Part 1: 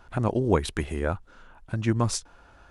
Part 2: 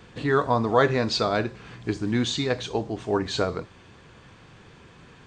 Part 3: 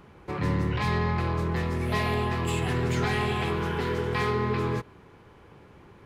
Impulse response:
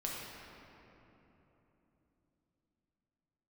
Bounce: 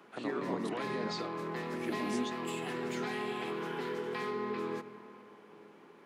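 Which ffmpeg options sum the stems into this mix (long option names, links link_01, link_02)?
-filter_complex "[0:a]volume=-11dB,asplit=2[link_01][link_02];[1:a]alimiter=limit=-16.5dB:level=0:latency=1,volume=-7.5dB[link_03];[2:a]volume=-5dB,asplit=2[link_04][link_05];[link_05]volume=-15dB[link_06];[link_02]apad=whole_len=232273[link_07];[link_03][link_07]sidechaingate=range=-33dB:threshold=-52dB:ratio=16:detection=peak[link_08];[3:a]atrim=start_sample=2205[link_09];[link_06][link_09]afir=irnorm=-1:irlink=0[link_10];[link_01][link_08][link_04][link_10]amix=inputs=4:normalize=0,highpass=frequency=230:width=0.5412,highpass=frequency=230:width=1.3066,acrossover=split=300[link_11][link_12];[link_12]acompressor=threshold=-38dB:ratio=3[link_13];[link_11][link_13]amix=inputs=2:normalize=0"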